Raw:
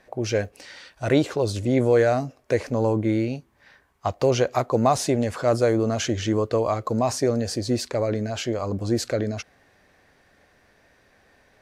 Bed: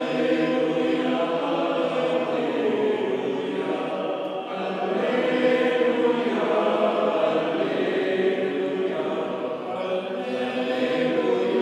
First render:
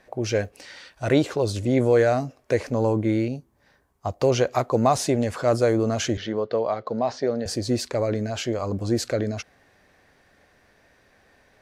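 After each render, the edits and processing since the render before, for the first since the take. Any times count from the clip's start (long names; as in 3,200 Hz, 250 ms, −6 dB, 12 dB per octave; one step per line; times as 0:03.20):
0:03.28–0:04.21: parametric band 2,300 Hz −10.5 dB 2.4 octaves
0:06.17–0:07.46: loudspeaker in its box 210–4,300 Hz, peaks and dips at 310 Hz −8 dB, 1,100 Hz −5 dB, 2,500 Hz −7 dB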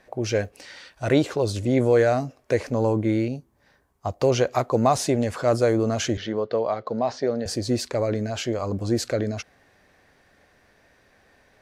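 no processing that can be heard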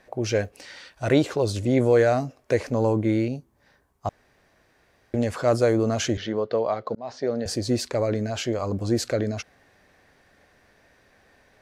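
0:04.09–0:05.14: fill with room tone
0:06.95–0:07.48: fade in equal-power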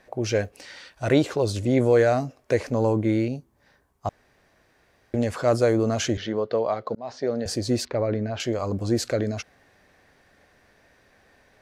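0:07.85–0:08.40: high-frequency loss of the air 230 metres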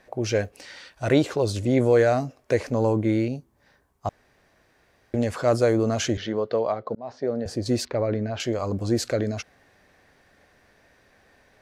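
0:06.72–0:07.66: high-shelf EQ 2,000 Hz −10 dB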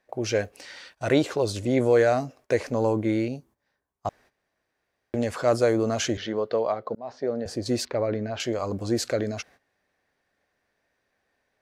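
noise gate −50 dBFS, range −15 dB
low-shelf EQ 190 Hz −6.5 dB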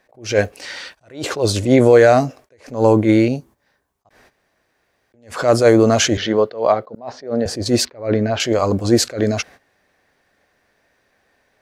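boost into a limiter +12 dB
level that may rise only so fast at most 160 dB per second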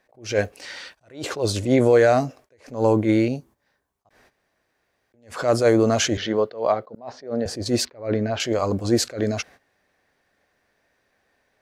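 level −5.5 dB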